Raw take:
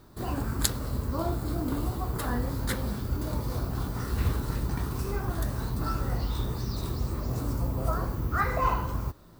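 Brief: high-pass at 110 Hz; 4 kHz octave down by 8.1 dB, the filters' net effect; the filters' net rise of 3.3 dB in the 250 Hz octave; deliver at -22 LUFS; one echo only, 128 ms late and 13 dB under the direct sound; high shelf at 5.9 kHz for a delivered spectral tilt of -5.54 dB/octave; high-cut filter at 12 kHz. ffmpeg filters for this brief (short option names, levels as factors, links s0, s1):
-af "highpass=110,lowpass=12000,equalizer=f=250:t=o:g=4.5,equalizer=f=4000:t=o:g=-7,highshelf=f=5900:g=-7,aecho=1:1:128:0.224,volume=3.16"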